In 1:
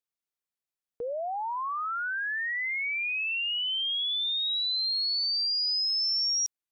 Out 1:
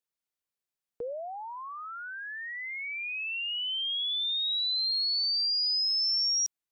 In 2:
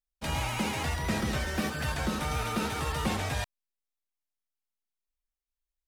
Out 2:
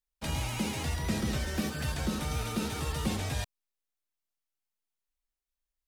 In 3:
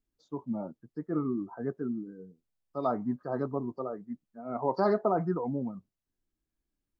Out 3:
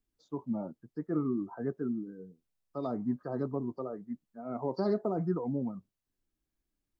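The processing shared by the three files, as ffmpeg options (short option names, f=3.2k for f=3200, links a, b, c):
-filter_complex "[0:a]acrossover=split=480|3000[a][b][c];[b]acompressor=threshold=-41dB:ratio=6[d];[a][d][c]amix=inputs=3:normalize=0"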